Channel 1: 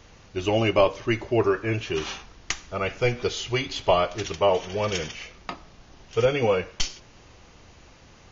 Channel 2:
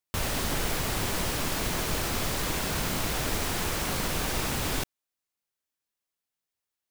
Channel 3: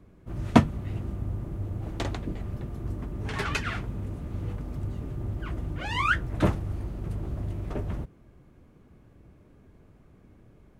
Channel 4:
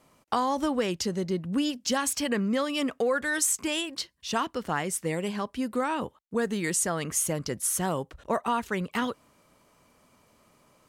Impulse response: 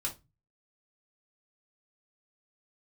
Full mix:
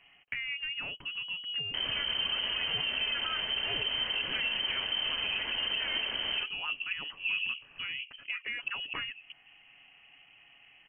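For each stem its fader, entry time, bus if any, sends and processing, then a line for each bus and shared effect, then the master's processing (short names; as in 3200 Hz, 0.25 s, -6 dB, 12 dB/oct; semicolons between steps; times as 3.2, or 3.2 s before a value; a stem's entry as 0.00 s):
-3.0 dB, 2.50 s, no send, inverse Chebyshev low-pass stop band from 1300 Hz, stop band 40 dB; flipped gate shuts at -17 dBFS, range -25 dB; HPF 220 Hz 12 dB/oct
-8.5 dB, 1.60 s, send -6.5 dB, dry
off
+1.0 dB, 0.00 s, no send, comb 7.1 ms, depth 36%; compressor 3:1, threshold -39 dBFS, peak gain reduction 13.5 dB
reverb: on, RT60 0.25 s, pre-delay 3 ms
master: inverted band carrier 3100 Hz; limiter -23 dBFS, peak gain reduction 8 dB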